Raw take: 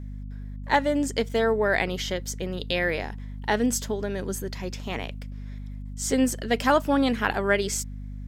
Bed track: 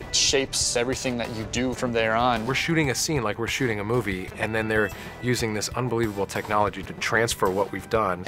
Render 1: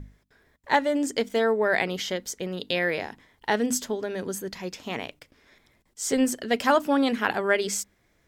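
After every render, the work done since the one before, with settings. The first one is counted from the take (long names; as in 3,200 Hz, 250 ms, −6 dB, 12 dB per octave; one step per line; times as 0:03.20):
mains-hum notches 50/100/150/200/250/300 Hz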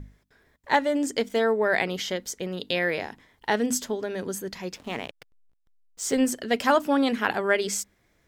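0:04.75–0:06.16: slack as between gear wheels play −40 dBFS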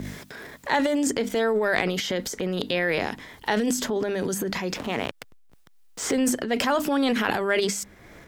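transient designer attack −4 dB, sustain +10 dB
multiband upward and downward compressor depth 70%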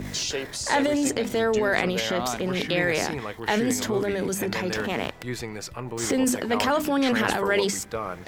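mix in bed track −8 dB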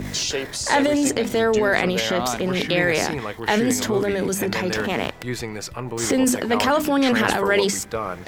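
level +4 dB
brickwall limiter −3 dBFS, peak gain reduction 2 dB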